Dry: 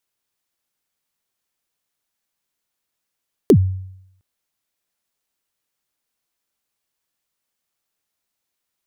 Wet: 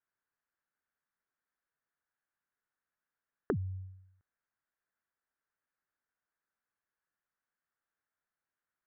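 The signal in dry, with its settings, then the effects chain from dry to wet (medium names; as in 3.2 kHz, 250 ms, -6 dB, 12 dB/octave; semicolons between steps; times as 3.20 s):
kick drum length 0.71 s, from 470 Hz, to 94 Hz, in 72 ms, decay 0.77 s, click on, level -4.5 dB
compression, threshold -21 dBFS; four-pole ladder low-pass 1.8 kHz, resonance 60%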